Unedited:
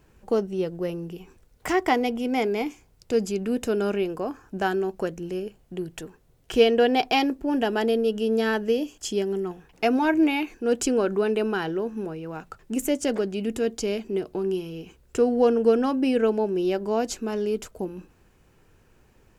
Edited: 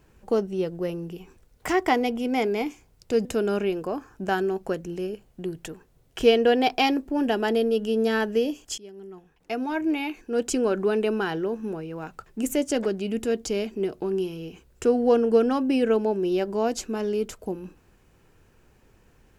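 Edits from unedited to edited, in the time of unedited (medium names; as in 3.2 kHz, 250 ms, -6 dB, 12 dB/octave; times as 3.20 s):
3.25–3.58 s: delete
9.11–11.20 s: fade in, from -22 dB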